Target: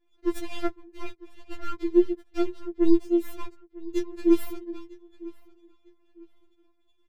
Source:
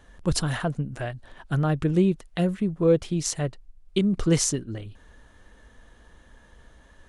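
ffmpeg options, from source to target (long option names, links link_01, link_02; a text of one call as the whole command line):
ffmpeg -i in.wav -filter_complex "[0:a]highpass=frequency=320:width=0.5412,highpass=frequency=320:width=1.3066,aemphasis=mode=reproduction:type=riaa,anlmdn=0.00158,acrossover=split=560[link_01][link_02];[link_02]aeval=exprs='abs(val(0))':channel_layout=same[link_03];[link_01][link_03]amix=inputs=2:normalize=0,asplit=2[link_04][link_05];[link_05]adelay=951,lowpass=frequency=4000:poles=1,volume=-20dB,asplit=2[link_06][link_07];[link_07]adelay=951,lowpass=frequency=4000:poles=1,volume=0.31[link_08];[link_04][link_06][link_08]amix=inputs=3:normalize=0,afftfilt=real='re*4*eq(mod(b,16),0)':imag='im*4*eq(mod(b,16),0)':win_size=2048:overlap=0.75" out.wav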